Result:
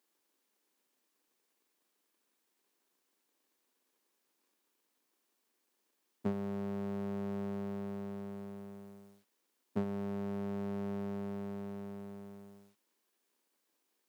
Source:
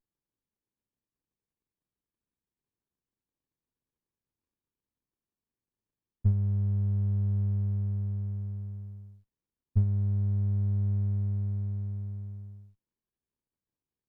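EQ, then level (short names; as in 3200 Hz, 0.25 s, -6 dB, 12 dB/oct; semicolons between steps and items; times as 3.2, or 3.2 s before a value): HPF 260 Hz 24 dB/oct; low shelf 470 Hz -4.5 dB; +15.0 dB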